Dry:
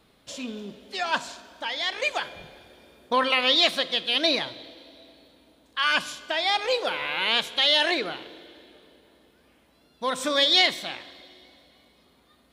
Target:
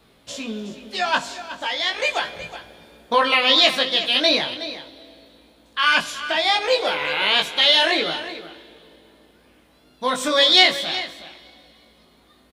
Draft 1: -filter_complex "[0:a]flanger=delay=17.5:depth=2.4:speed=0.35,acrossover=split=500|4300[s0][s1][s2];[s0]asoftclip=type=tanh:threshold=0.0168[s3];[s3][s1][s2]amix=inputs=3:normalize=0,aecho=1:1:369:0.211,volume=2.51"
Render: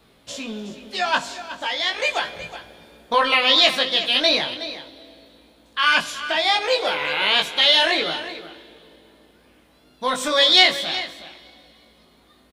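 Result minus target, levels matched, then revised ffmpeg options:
saturation: distortion +12 dB
-filter_complex "[0:a]flanger=delay=17.5:depth=2.4:speed=0.35,acrossover=split=500|4300[s0][s1][s2];[s0]asoftclip=type=tanh:threshold=0.0473[s3];[s3][s1][s2]amix=inputs=3:normalize=0,aecho=1:1:369:0.211,volume=2.51"

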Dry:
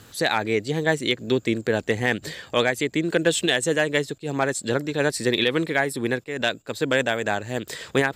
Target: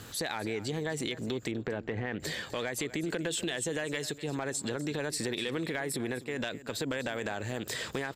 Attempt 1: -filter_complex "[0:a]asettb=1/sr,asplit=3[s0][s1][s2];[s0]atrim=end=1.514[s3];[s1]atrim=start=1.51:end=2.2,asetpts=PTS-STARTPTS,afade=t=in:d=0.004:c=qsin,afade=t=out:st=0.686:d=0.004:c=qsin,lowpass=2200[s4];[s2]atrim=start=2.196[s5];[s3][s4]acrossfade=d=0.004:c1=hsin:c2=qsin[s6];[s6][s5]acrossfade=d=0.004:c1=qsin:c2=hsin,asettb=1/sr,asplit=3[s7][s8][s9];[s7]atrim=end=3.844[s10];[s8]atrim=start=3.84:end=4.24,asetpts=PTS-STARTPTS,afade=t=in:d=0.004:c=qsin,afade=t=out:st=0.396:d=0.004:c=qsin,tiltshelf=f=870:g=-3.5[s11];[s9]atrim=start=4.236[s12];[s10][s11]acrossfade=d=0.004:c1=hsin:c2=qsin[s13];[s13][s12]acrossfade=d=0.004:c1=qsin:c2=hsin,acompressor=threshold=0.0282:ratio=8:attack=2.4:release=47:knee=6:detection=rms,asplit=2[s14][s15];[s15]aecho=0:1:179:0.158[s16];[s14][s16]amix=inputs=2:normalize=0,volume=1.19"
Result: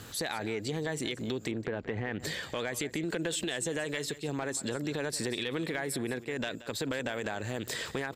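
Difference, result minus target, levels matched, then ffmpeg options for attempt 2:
echo 71 ms early
-filter_complex "[0:a]asettb=1/sr,asplit=3[s0][s1][s2];[s0]atrim=end=1.514[s3];[s1]atrim=start=1.51:end=2.2,asetpts=PTS-STARTPTS,afade=t=in:d=0.004:c=qsin,afade=t=out:st=0.686:d=0.004:c=qsin,lowpass=2200[s4];[s2]atrim=start=2.196[s5];[s3][s4]acrossfade=d=0.004:c1=hsin:c2=qsin[s6];[s6][s5]acrossfade=d=0.004:c1=qsin:c2=hsin,asettb=1/sr,asplit=3[s7][s8][s9];[s7]atrim=end=3.844[s10];[s8]atrim=start=3.84:end=4.24,asetpts=PTS-STARTPTS,afade=t=in:d=0.004:c=qsin,afade=t=out:st=0.396:d=0.004:c=qsin,tiltshelf=f=870:g=-3.5[s11];[s9]atrim=start=4.236[s12];[s10][s11]acrossfade=d=0.004:c1=hsin:c2=qsin[s13];[s13][s12]acrossfade=d=0.004:c1=qsin:c2=hsin,acompressor=threshold=0.0282:ratio=8:attack=2.4:release=47:knee=6:detection=rms,asplit=2[s14][s15];[s15]aecho=0:1:250:0.158[s16];[s14][s16]amix=inputs=2:normalize=0,volume=1.19"

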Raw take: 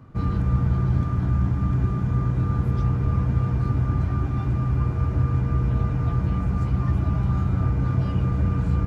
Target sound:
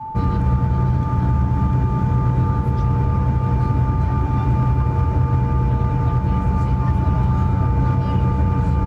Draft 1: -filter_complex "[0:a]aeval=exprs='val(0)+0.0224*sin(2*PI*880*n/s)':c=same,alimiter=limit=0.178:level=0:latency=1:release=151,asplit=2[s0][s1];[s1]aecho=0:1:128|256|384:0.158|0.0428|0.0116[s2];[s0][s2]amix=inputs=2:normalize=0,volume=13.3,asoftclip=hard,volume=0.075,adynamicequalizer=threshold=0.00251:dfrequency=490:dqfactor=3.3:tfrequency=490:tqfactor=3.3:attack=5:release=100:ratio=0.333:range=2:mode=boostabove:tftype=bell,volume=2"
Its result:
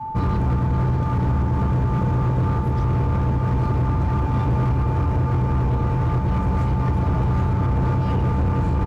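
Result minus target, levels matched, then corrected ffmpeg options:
overload inside the chain: distortion +20 dB
-filter_complex "[0:a]aeval=exprs='val(0)+0.0224*sin(2*PI*880*n/s)':c=same,alimiter=limit=0.178:level=0:latency=1:release=151,asplit=2[s0][s1];[s1]aecho=0:1:128|256|384:0.158|0.0428|0.0116[s2];[s0][s2]amix=inputs=2:normalize=0,volume=6.31,asoftclip=hard,volume=0.158,adynamicequalizer=threshold=0.00251:dfrequency=490:dqfactor=3.3:tfrequency=490:tqfactor=3.3:attack=5:release=100:ratio=0.333:range=2:mode=boostabove:tftype=bell,volume=2"

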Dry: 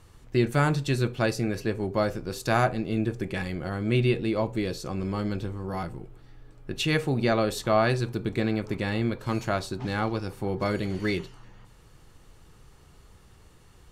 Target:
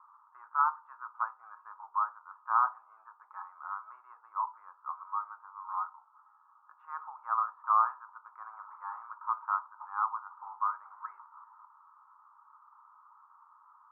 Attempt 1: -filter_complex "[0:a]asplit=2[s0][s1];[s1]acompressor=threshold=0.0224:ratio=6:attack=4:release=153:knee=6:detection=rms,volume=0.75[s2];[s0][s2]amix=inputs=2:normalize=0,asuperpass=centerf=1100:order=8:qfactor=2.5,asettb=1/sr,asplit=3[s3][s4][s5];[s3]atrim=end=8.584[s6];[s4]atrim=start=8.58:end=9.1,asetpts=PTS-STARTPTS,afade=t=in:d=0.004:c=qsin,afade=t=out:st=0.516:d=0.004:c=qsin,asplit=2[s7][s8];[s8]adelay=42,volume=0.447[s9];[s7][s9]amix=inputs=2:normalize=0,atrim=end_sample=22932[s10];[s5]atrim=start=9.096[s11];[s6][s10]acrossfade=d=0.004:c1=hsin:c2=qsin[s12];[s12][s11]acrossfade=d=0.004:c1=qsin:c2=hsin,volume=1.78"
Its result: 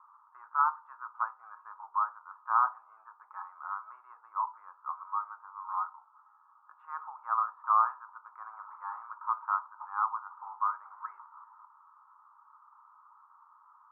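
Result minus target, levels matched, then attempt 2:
compression: peak gain reduction -8.5 dB
-filter_complex "[0:a]asplit=2[s0][s1];[s1]acompressor=threshold=0.00708:ratio=6:attack=4:release=153:knee=6:detection=rms,volume=0.75[s2];[s0][s2]amix=inputs=2:normalize=0,asuperpass=centerf=1100:order=8:qfactor=2.5,asettb=1/sr,asplit=3[s3][s4][s5];[s3]atrim=end=8.584[s6];[s4]atrim=start=8.58:end=9.1,asetpts=PTS-STARTPTS,afade=t=in:d=0.004:c=qsin,afade=t=out:st=0.516:d=0.004:c=qsin,asplit=2[s7][s8];[s8]adelay=42,volume=0.447[s9];[s7][s9]amix=inputs=2:normalize=0,atrim=end_sample=22932[s10];[s5]atrim=start=9.096[s11];[s6][s10]acrossfade=d=0.004:c1=hsin:c2=qsin[s12];[s12][s11]acrossfade=d=0.004:c1=qsin:c2=hsin,volume=1.78"

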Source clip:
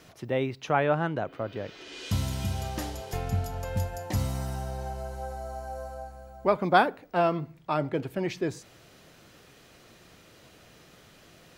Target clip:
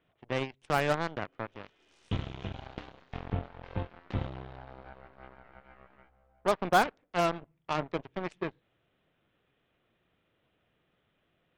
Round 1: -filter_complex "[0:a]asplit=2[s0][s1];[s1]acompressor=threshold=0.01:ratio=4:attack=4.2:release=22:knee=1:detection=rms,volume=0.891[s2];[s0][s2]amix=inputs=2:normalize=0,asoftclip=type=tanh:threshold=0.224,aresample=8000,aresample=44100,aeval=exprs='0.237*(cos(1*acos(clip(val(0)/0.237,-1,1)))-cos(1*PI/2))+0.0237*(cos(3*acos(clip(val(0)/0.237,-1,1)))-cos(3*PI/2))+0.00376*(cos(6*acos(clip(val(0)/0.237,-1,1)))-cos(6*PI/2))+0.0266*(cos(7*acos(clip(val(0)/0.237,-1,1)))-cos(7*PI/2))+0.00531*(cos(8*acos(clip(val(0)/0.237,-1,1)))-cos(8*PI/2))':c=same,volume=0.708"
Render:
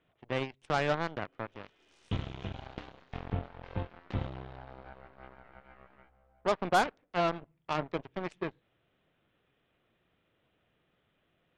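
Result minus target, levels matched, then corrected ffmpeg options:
saturation: distortion +9 dB
-filter_complex "[0:a]asplit=2[s0][s1];[s1]acompressor=threshold=0.01:ratio=4:attack=4.2:release=22:knee=1:detection=rms,volume=0.891[s2];[s0][s2]amix=inputs=2:normalize=0,asoftclip=type=tanh:threshold=0.447,aresample=8000,aresample=44100,aeval=exprs='0.237*(cos(1*acos(clip(val(0)/0.237,-1,1)))-cos(1*PI/2))+0.0237*(cos(3*acos(clip(val(0)/0.237,-1,1)))-cos(3*PI/2))+0.00376*(cos(6*acos(clip(val(0)/0.237,-1,1)))-cos(6*PI/2))+0.0266*(cos(7*acos(clip(val(0)/0.237,-1,1)))-cos(7*PI/2))+0.00531*(cos(8*acos(clip(val(0)/0.237,-1,1)))-cos(8*PI/2))':c=same,volume=0.708"

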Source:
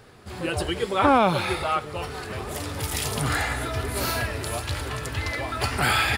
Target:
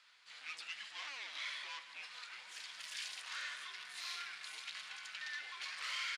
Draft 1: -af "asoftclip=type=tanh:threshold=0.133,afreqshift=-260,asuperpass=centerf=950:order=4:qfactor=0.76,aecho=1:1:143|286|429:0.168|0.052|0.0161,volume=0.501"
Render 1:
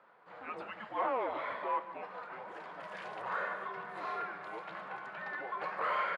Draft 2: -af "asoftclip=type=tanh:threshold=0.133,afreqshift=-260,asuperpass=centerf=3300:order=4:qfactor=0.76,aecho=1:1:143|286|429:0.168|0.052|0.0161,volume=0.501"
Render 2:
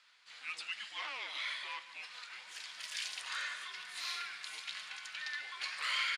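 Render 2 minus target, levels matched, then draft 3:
saturation: distortion -7 dB
-af "asoftclip=type=tanh:threshold=0.0376,afreqshift=-260,asuperpass=centerf=3300:order=4:qfactor=0.76,aecho=1:1:143|286|429:0.168|0.052|0.0161,volume=0.501"

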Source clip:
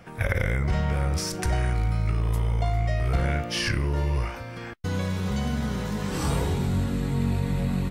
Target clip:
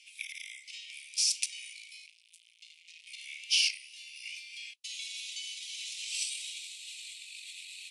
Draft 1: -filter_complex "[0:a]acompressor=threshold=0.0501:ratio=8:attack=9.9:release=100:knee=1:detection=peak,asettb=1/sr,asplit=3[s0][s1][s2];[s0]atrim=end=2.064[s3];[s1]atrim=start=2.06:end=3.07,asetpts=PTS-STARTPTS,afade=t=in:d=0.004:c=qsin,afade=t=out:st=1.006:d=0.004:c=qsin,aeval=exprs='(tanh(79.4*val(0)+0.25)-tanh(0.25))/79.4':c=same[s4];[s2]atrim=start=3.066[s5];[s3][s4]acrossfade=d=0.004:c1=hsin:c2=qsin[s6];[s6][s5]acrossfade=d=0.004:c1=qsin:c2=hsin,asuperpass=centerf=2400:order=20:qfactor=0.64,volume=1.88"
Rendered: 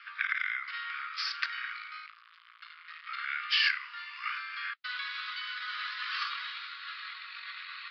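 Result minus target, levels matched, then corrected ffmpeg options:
2 kHz band +8.5 dB
-filter_complex "[0:a]acompressor=threshold=0.0501:ratio=8:attack=9.9:release=100:knee=1:detection=peak,asettb=1/sr,asplit=3[s0][s1][s2];[s0]atrim=end=2.064[s3];[s1]atrim=start=2.06:end=3.07,asetpts=PTS-STARTPTS,afade=t=in:d=0.004:c=qsin,afade=t=out:st=1.006:d=0.004:c=qsin,aeval=exprs='(tanh(79.4*val(0)+0.25)-tanh(0.25))/79.4':c=same[s4];[s2]atrim=start=3.066[s5];[s3][s4]acrossfade=d=0.004:c1=hsin:c2=qsin[s6];[s6][s5]acrossfade=d=0.004:c1=qsin:c2=hsin,asuperpass=centerf=5400:order=20:qfactor=0.64,volume=1.88"

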